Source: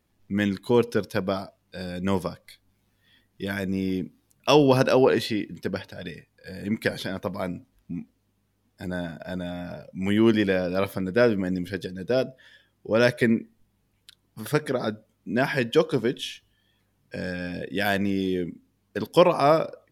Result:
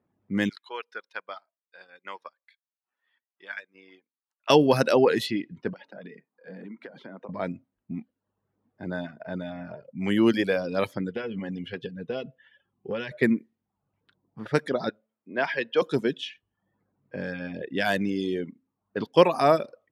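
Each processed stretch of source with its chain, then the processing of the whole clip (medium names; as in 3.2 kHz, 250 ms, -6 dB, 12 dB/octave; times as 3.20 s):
0.49–4.50 s: high-pass 1.4 kHz + transient shaper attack +2 dB, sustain -9 dB
5.73–7.29 s: steep high-pass 170 Hz + compression 20:1, threshold -35 dBFS
11.09–13.11 s: peaking EQ 2.9 kHz +12 dB 0.41 oct + compression 16:1, threshold -24 dBFS + comb of notches 310 Hz
14.89–15.82 s: three-band isolator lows -15 dB, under 400 Hz, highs -24 dB, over 5.2 kHz + de-hum 219.9 Hz, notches 3
whole clip: level-controlled noise filter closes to 1.2 kHz, open at -18.5 dBFS; high-pass 130 Hz 12 dB/octave; reverb removal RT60 0.6 s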